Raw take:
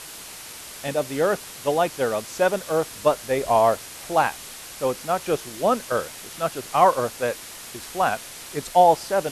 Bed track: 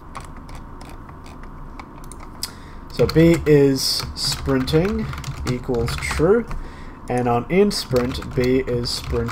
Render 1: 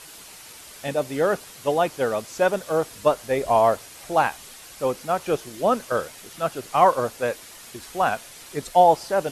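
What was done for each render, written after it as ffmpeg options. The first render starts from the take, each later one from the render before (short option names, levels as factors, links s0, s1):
-af "afftdn=nr=6:nf=-40"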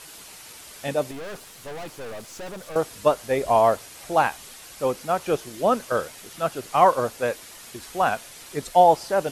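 -filter_complex "[0:a]asettb=1/sr,asplit=3[s0][s1][s2];[s0]atrim=end=1.114[s3];[s1]atrim=start=1.11:end=2.76,asetpts=PTS-STARTPTS,afade=t=in:d=0.004:c=qsin,afade=t=out:st=1.646:d=0.004:c=qsin,aeval=exprs='(tanh(50.1*val(0)+0.45)-tanh(0.45))/50.1':c=same[s4];[s2]atrim=start=2.756[s5];[s3][s4]acrossfade=d=0.004:c1=hsin:c2=qsin[s6];[s6][s5]acrossfade=d=0.004:c1=qsin:c2=hsin"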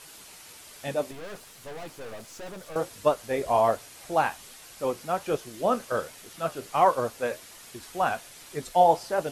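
-af "flanger=delay=6.5:depth=6.5:regen=-62:speed=1.3:shape=triangular"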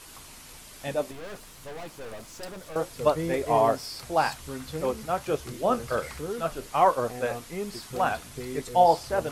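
-filter_complex "[1:a]volume=0.126[s0];[0:a][s0]amix=inputs=2:normalize=0"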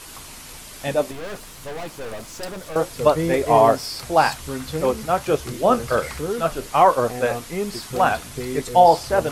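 -af "volume=2.37,alimiter=limit=0.708:level=0:latency=1"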